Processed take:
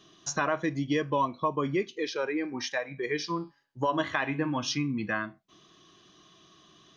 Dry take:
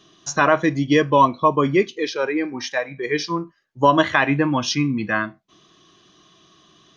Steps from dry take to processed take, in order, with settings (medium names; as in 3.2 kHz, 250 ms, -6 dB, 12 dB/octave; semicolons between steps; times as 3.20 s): compression 2:1, threshold -26 dBFS, peak gain reduction 9.5 dB; 3.21–4.77 s: de-hum 139.8 Hz, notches 38; trim -4 dB